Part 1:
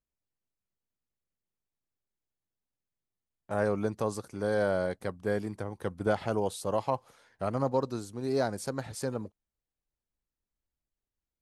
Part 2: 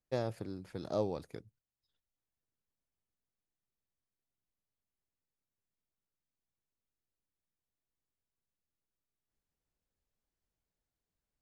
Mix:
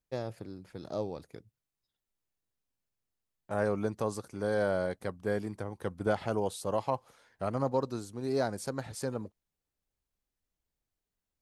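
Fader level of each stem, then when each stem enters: -1.5, -1.5 dB; 0.00, 0.00 s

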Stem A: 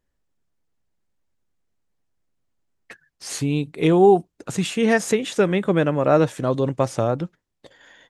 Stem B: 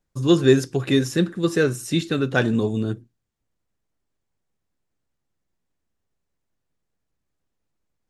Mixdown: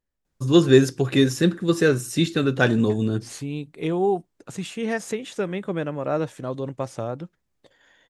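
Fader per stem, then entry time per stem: -8.0, +1.0 dB; 0.00, 0.25 s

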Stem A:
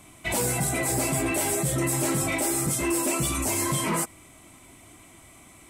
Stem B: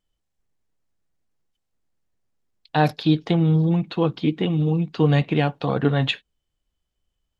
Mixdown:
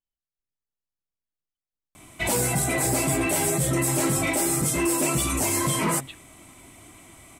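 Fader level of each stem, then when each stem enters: +2.0, -18.5 dB; 1.95, 0.00 s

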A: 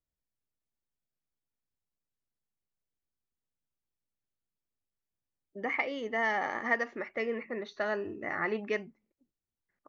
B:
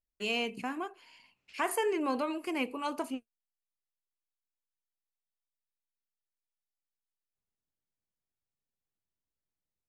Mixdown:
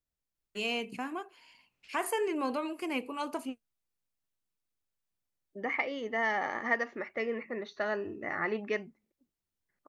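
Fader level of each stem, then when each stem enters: -0.5, -1.0 dB; 0.00, 0.35 s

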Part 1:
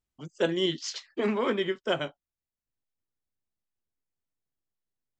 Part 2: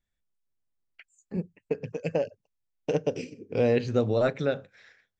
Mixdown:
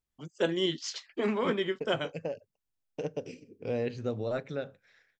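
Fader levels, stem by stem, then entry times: -2.0, -8.5 dB; 0.00, 0.10 s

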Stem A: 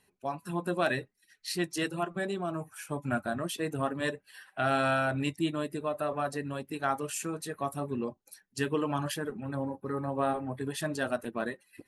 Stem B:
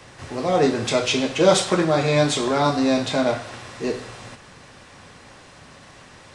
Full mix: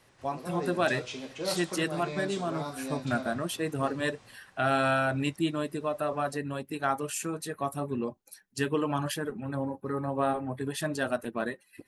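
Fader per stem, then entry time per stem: +1.5, -18.0 dB; 0.00, 0.00 s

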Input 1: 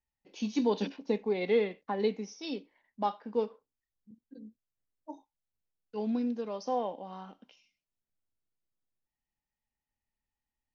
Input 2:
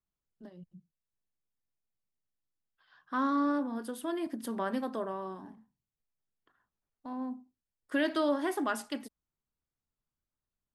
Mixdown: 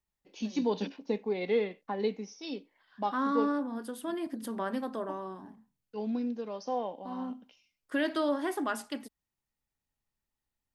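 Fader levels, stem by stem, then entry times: -1.5, -0.5 dB; 0.00, 0.00 s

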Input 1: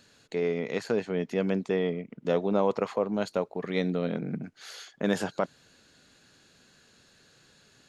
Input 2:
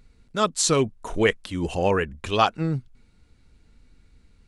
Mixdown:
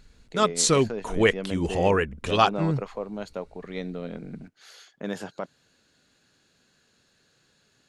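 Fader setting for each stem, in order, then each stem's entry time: -5.5, 0.0 dB; 0.00, 0.00 s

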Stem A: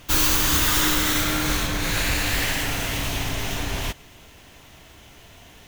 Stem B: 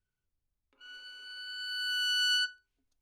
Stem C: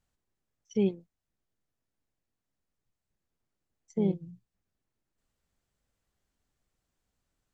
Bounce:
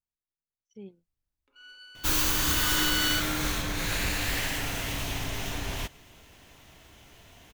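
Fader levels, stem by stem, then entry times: -6.0, -1.5, -18.5 dB; 1.95, 0.75, 0.00 s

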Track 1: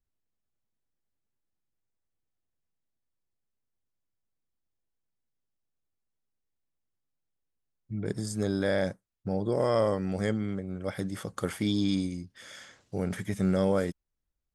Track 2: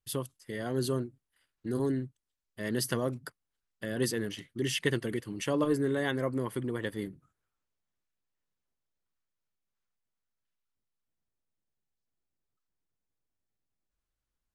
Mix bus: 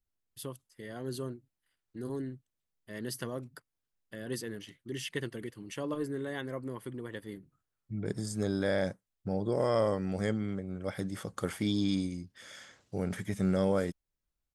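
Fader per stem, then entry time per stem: -2.5, -7.0 dB; 0.00, 0.30 s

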